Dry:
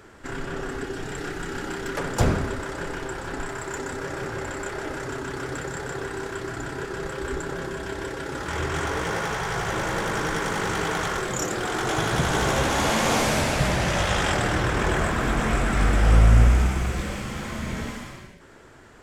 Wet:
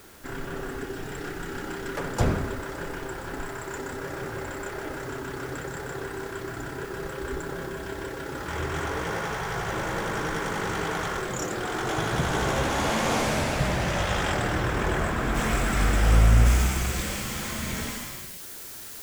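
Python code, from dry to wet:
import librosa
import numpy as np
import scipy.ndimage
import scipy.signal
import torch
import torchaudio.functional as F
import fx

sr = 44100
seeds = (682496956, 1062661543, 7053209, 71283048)

y = fx.quant_dither(x, sr, seeds[0], bits=8, dither='triangular')
y = fx.high_shelf(y, sr, hz=2900.0, db=fx.steps((0.0, -3.0), (15.34, 5.5), (16.45, 11.0)))
y = y * librosa.db_to_amplitude(-2.5)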